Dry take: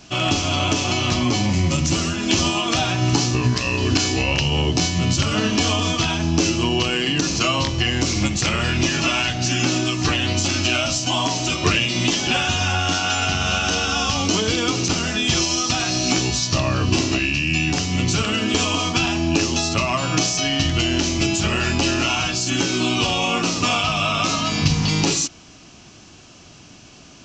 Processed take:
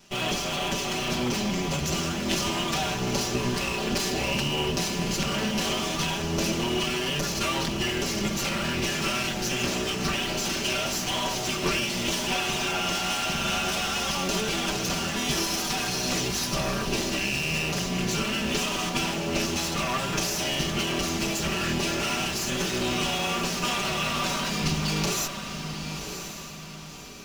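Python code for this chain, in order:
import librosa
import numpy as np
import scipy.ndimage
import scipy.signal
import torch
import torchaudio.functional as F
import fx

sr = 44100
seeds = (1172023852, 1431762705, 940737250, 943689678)

p1 = fx.lower_of_two(x, sr, delay_ms=5.1)
p2 = fx.schmitt(p1, sr, flips_db=-30.0)
p3 = p1 + (p2 * 10.0 ** (-9.0 / 20.0))
p4 = fx.echo_diffused(p3, sr, ms=1046, feedback_pct=42, wet_db=-7.5)
y = p4 * 10.0 ** (-8.0 / 20.0)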